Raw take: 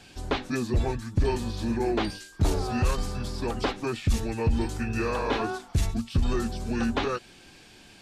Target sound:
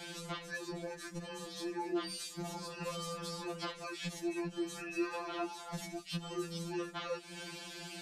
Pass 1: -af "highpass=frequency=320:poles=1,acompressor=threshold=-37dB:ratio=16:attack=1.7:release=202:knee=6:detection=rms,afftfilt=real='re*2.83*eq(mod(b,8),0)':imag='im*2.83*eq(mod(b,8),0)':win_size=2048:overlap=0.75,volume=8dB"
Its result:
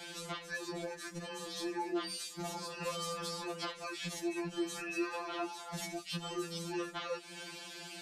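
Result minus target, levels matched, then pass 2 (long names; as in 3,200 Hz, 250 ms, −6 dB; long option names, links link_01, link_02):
125 Hz band −3.0 dB
-af "highpass=frequency=87:poles=1,acompressor=threshold=-37dB:ratio=16:attack=1.7:release=202:knee=6:detection=rms,afftfilt=real='re*2.83*eq(mod(b,8),0)':imag='im*2.83*eq(mod(b,8),0)':win_size=2048:overlap=0.75,volume=8dB"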